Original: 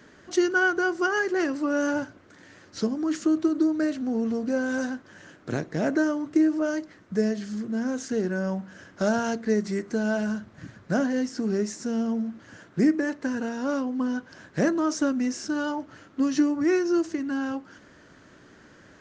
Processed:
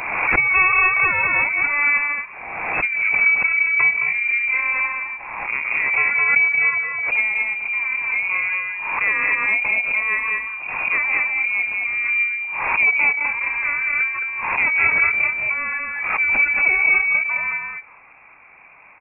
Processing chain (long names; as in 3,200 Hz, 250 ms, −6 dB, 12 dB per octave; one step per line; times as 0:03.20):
stylus tracing distortion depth 0.41 ms
on a send: loudspeakers that aren't time-aligned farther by 62 metres −11 dB, 74 metres −3 dB
on the sum: voice inversion scrambler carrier 2,600 Hz
background raised ahead of every attack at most 37 dB per second
level +2.5 dB